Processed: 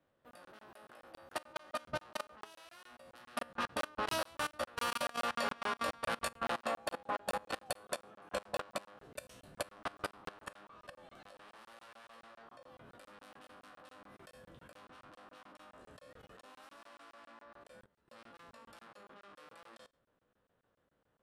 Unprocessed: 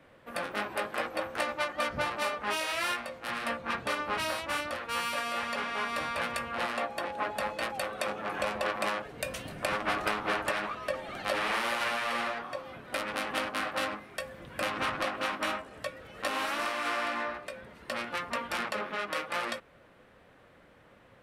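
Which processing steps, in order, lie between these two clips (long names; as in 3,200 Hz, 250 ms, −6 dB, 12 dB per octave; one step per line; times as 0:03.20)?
peak hold with a decay on every bin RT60 0.33 s
source passing by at 0:05.42, 10 m/s, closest 15 metres
downward compressor 2 to 1, threshold −46 dBFS, peak gain reduction 10 dB
parametric band 2,200 Hz −7.5 dB 0.54 octaves
output level in coarse steps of 22 dB
regular buffer underruns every 0.14 s, samples 1,024, zero, from 0:00.31
level +9.5 dB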